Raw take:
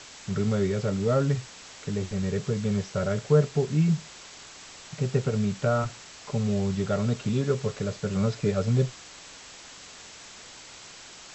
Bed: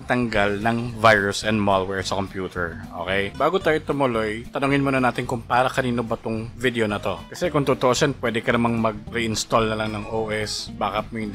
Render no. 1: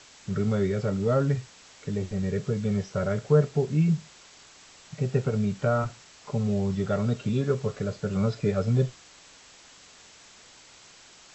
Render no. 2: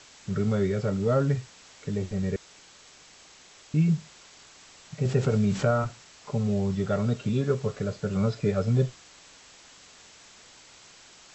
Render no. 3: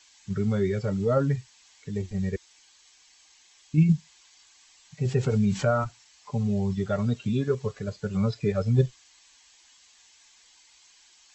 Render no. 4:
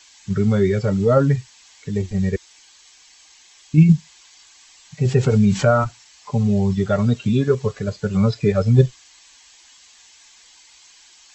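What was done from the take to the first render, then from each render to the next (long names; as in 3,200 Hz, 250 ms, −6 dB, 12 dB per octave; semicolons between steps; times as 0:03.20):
noise reduction from a noise print 6 dB
0:02.36–0:03.74: fill with room tone; 0:05.05–0:05.71: envelope flattener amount 50%
spectral dynamics exaggerated over time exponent 1.5; in parallel at −2 dB: output level in coarse steps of 11 dB
level +8 dB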